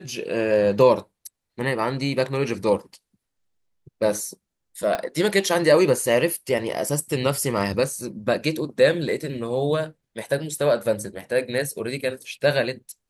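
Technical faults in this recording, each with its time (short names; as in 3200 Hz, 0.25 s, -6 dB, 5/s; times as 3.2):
4.95 pop -11 dBFS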